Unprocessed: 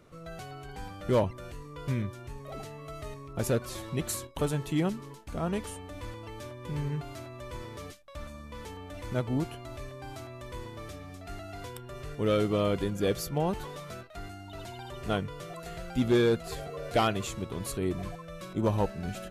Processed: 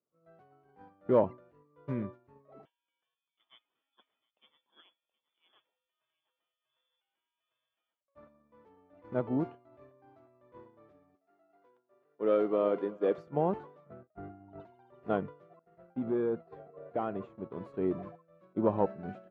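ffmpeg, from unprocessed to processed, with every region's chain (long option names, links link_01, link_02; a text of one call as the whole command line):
ffmpeg -i in.wav -filter_complex "[0:a]asettb=1/sr,asplit=3[link_01][link_02][link_03];[link_01]atrim=end=2.654[link_04];[link_02]atrim=start=2.65:end=8.01,asetpts=PTS-STARTPTS,afade=type=in:duration=0.004:curve=qsin,afade=type=out:start_time=5.356:duration=0.004:curve=qsin,lowshelf=frequency=78:gain=-6.5,aecho=1:1:724:0.355,atrim=end_sample=236376,lowpass=frequency=3100:width_type=q:width=0.5098,lowpass=frequency=3100:width_type=q:width=0.6013,lowpass=frequency=3100:width_type=q:width=0.9,lowpass=frequency=3100:width_type=q:width=2.563,afreqshift=-3600[link_05];[link_03]atrim=start=8.006[link_06];[link_04][link_05]acrossfade=duration=0.004:curve1=hsin:curve2=qsin[link_07];[link_07][link_06]acrossfade=duration=0.004:curve1=qsin:curve2=hsin,asettb=1/sr,asplit=3[link_08][link_09][link_10];[link_08]atrim=end=11.154[link_11];[link_09]atrim=start=11.15:end=13.18,asetpts=PTS-STARTPTS,afade=type=in:duration=0.004:curve=qsin,afade=type=out:start_time=2.026:duration=0.004:curve=qsin,highpass=300,aecho=1:1:375:0.15,atrim=end_sample=89523[link_12];[link_10]atrim=start=13.176[link_13];[link_11][link_12]acrossfade=duration=0.004:curve1=hsin:curve2=qsin[link_14];[link_14][link_13]acrossfade=duration=0.004:curve1=qsin:curve2=hsin,asettb=1/sr,asplit=3[link_15][link_16][link_17];[link_15]atrim=end=13.864[link_18];[link_16]atrim=start=13.86:end=14.6,asetpts=PTS-STARTPTS,afade=type=in:duration=0.004:curve=qsin,afade=type=out:start_time=0.736:duration=0.004:curve=qsin,lowshelf=frequency=170:gain=10.5,bandreject=frequency=1000:width=9.6,adynamicsmooth=sensitivity=5:basefreq=1300[link_19];[link_17]atrim=start=14.596[link_20];[link_18][link_19]acrossfade=duration=0.004:curve1=hsin:curve2=qsin[link_21];[link_21][link_20]acrossfade=duration=0.004:curve1=qsin:curve2=hsin,asettb=1/sr,asplit=3[link_22][link_23][link_24];[link_22]atrim=end=15.594[link_25];[link_23]atrim=start=15.59:end=17.51,asetpts=PTS-STARTPTS,afade=type=in:duration=0.004:curve=qsin,afade=type=out:start_time=1.916:duration=0.004:curve=qsin,agate=range=-33dB:threshold=-39dB:ratio=3:release=100:detection=peak,lowpass=frequency=1900:poles=1,acompressor=threshold=-28dB:ratio=5:attack=3.2:release=140:knee=1:detection=peak[link_26];[link_24]atrim=start=17.506[link_27];[link_25][link_26]acrossfade=duration=0.004:curve1=hsin:curve2=qsin[link_28];[link_28][link_27]acrossfade=duration=0.004:curve1=qsin:curve2=hsin,lowpass=1100,agate=range=-33dB:threshold=-31dB:ratio=3:detection=peak,highpass=210,volume=1.5dB" out.wav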